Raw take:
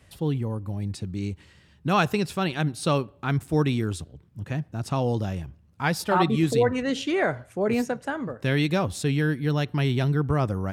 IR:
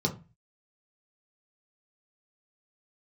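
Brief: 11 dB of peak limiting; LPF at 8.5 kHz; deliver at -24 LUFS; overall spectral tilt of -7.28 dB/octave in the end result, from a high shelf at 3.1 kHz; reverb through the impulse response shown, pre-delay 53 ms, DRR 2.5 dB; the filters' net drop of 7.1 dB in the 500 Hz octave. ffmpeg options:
-filter_complex "[0:a]lowpass=8500,equalizer=f=500:t=o:g=-9,highshelf=f=3100:g=4.5,alimiter=limit=0.0891:level=0:latency=1,asplit=2[s0][s1];[1:a]atrim=start_sample=2205,adelay=53[s2];[s1][s2]afir=irnorm=-1:irlink=0,volume=0.316[s3];[s0][s3]amix=inputs=2:normalize=0,volume=0.794"

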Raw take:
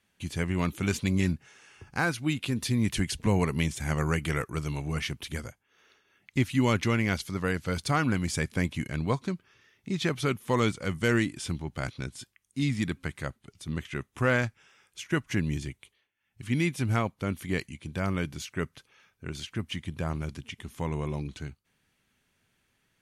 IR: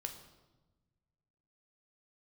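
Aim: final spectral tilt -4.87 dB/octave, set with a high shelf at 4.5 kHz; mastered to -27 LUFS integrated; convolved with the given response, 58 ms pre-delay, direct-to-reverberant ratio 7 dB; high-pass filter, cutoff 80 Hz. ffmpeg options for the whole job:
-filter_complex "[0:a]highpass=80,highshelf=f=4500:g=6,asplit=2[s0][s1];[1:a]atrim=start_sample=2205,adelay=58[s2];[s1][s2]afir=irnorm=-1:irlink=0,volume=0.562[s3];[s0][s3]amix=inputs=2:normalize=0,volume=1.33"

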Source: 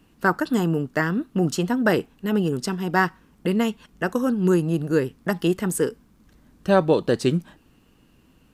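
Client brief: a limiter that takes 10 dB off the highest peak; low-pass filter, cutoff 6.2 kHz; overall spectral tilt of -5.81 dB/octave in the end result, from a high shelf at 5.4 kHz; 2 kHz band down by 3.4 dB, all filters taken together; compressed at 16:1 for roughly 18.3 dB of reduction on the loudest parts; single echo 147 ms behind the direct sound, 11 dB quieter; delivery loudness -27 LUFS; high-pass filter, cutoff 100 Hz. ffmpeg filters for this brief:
-af "highpass=100,lowpass=6200,equalizer=f=2000:t=o:g=-5.5,highshelf=f=5400:g=7.5,acompressor=threshold=0.0282:ratio=16,alimiter=level_in=1.5:limit=0.0631:level=0:latency=1,volume=0.668,aecho=1:1:147:0.282,volume=3.55"

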